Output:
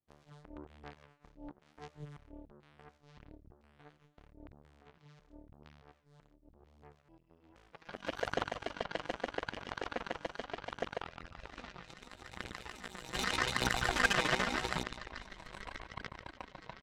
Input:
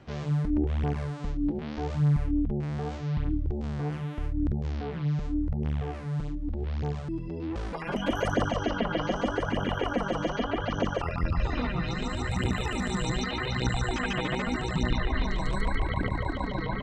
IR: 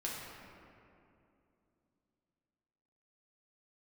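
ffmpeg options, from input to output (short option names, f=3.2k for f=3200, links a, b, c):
-filter_complex "[0:a]asplit=3[a][b][c];[a]afade=t=out:st=1.34:d=0.02[d];[b]aecho=1:1:6.5:0.48,afade=t=in:st=1.34:d=0.02,afade=t=out:st=2.04:d=0.02[e];[c]afade=t=in:st=2.04:d=0.02[f];[d][e][f]amix=inputs=3:normalize=0,asplit=3[g][h][i];[g]afade=t=out:st=13.13:d=0.02[j];[h]acontrast=50,afade=t=in:st=13.13:d=0.02,afade=t=out:st=14.82:d=0.02[k];[i]afade=t=in:st=14.82:d=0.02[l];[j][k][l]amix=inputs=3:normalize=0,adynamicequalizer=threshold=0.00562:dfrequency=1600:dqfactor=5.3:tfrequency=1600:tqfactor=5.3:attack=5:release=100:ratio=0.375:range=2:mode=boostabove:tftype=bell,acrossover=split=450|3000[m][n][o];[m]acompressor=threshold=-48dB:ratio=1.5[p];[p][n][o]amix=inputs=3:normalize=0,aeval=exprs='0.266*(cos(1*acos(clip(val(0)/0.266,-1,1)))-cos(1*PI/2))+0.0015*(cos(6*acos(clip(val(0)/0.266,-1,1)))-cos(6*PI/2))+0.0376*(cos(7*acos(clip(val(0)/0.266,-1,1)))-cos(7*PI/2))':c=same,volume=-3dB"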